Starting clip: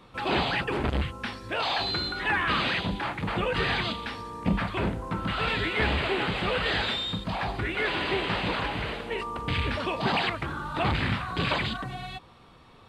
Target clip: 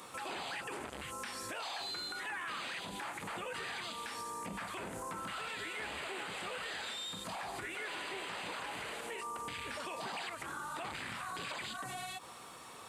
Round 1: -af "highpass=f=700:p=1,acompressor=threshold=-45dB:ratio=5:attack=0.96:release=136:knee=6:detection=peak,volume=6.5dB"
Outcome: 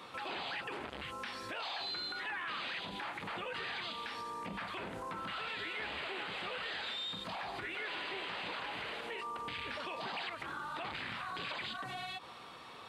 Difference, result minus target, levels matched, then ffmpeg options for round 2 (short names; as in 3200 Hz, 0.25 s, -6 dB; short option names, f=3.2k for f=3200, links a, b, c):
8000 Hz band -14.0 dB
-af "highpass=f=700:p=1,acompressor=threshold=-45dB:ratio=5:attack=0.96:release=136:knee=6:detection=peak,highshelf=f=5.5k:t=q:w=1.5:g=12,volume=6.5dB"